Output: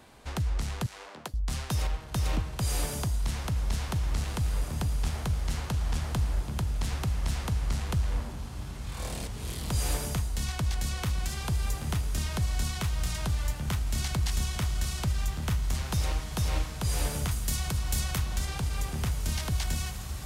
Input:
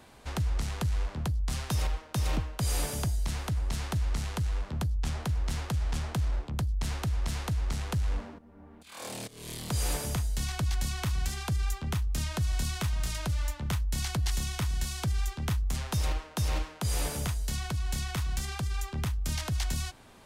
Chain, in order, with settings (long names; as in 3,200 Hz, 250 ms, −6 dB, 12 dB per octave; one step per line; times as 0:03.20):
0:00.86–0:01.34: high-pass filter 380 Hz 12 dB per octave
0:17.31–0:18.18: high-shelf EQ 7,500 Hz +11.5 dB
on a send: feedback delay with all-pass diffusion 1,952 ms, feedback 56%, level −8.5 dB